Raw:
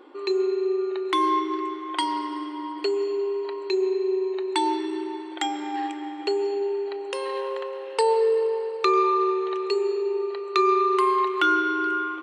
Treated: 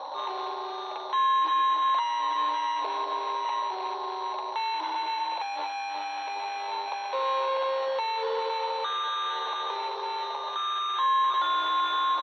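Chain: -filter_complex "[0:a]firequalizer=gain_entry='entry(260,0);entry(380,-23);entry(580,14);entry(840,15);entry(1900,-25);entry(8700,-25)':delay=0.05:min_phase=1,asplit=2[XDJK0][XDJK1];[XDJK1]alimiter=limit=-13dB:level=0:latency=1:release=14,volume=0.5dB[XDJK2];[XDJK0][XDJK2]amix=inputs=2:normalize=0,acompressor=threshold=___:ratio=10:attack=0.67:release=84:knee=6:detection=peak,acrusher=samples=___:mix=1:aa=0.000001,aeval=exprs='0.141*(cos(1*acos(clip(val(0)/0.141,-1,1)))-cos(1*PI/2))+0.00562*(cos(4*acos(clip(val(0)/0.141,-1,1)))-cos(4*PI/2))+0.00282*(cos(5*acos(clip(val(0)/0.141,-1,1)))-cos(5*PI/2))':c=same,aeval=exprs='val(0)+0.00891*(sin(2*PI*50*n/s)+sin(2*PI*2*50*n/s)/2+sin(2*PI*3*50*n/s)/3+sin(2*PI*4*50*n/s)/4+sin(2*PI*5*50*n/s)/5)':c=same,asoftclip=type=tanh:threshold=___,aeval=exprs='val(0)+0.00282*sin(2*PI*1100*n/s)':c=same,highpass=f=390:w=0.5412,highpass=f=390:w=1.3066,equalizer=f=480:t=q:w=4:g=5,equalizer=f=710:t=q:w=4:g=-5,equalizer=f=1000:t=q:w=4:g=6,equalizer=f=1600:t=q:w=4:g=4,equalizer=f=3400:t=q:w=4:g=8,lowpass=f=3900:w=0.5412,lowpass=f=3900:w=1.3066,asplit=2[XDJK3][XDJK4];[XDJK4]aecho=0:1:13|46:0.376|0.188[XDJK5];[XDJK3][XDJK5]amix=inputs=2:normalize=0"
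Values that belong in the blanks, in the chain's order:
-22dB, 9, -28.5dB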